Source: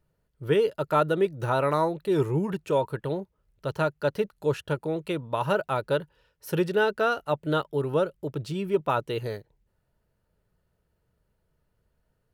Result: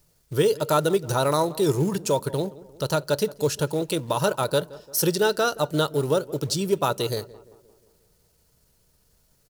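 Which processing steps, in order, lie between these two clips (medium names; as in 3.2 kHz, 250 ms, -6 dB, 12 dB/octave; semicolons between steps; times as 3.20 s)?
resonant high shelf 3.6 kHz +14 dB, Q 1.5; in parallel at -1 dB: compression 20:1, threshold -33 dBFS, peak gain reduction 16.5 dB; on the sum: companded quantiser 6-bit; tempo 1.3×; tape echo 174 ms, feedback 58%, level -17.5 dB, low-pass 1.4 kHz; on a send at -23 dB: reverberation RT60 0.35 s, pre-delay 4 ms; on the sum: trim +1 dB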